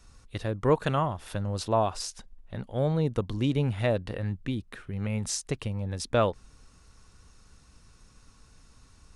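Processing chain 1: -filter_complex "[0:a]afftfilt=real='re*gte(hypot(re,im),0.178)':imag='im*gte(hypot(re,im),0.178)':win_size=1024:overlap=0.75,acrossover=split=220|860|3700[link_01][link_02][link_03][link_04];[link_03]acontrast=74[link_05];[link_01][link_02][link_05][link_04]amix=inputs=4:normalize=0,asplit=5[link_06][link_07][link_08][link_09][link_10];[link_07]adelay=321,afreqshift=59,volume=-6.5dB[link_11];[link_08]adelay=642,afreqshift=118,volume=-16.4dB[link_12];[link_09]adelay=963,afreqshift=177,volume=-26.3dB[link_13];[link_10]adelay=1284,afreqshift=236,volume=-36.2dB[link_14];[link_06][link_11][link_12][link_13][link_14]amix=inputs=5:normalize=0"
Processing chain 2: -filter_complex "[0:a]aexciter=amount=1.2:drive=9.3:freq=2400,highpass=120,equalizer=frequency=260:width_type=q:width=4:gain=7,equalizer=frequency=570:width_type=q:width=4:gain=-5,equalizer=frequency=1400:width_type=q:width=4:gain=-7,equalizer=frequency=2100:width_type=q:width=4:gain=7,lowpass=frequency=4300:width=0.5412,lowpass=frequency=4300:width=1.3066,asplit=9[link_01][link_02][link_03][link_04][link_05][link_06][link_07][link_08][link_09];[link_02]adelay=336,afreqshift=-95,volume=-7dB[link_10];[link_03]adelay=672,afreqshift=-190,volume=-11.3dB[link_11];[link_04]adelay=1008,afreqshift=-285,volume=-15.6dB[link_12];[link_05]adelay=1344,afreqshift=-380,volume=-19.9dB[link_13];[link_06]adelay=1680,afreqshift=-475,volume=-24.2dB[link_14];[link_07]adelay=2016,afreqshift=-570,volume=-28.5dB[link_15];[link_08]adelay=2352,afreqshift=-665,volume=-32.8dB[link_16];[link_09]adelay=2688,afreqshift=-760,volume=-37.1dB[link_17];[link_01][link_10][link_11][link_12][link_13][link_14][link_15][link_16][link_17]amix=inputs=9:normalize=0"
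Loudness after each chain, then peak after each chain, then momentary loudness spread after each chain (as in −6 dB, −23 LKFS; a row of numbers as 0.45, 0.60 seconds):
−29.0, −29.5 LKFS; −9.5, −9.0 dBFS; 13, 14 LU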